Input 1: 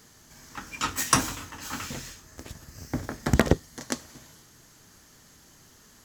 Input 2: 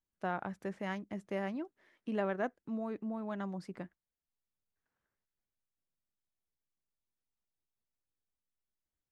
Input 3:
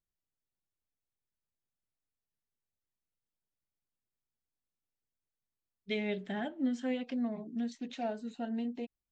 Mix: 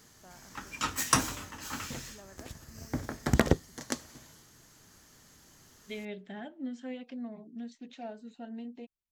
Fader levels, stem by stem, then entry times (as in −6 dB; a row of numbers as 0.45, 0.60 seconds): −3.5, −19.5, −6.0 decibels; 0.00, 0.00, 0.00 seconds